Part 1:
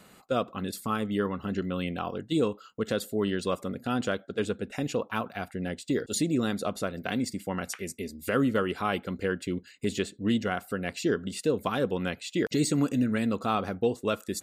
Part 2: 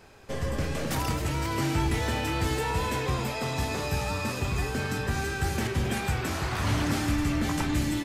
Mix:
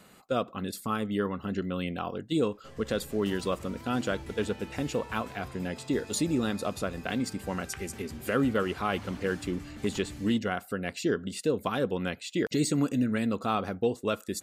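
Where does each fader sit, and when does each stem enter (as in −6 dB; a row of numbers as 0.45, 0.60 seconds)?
−1.0, −17.0 decibels; 0.00, 2.35 seconds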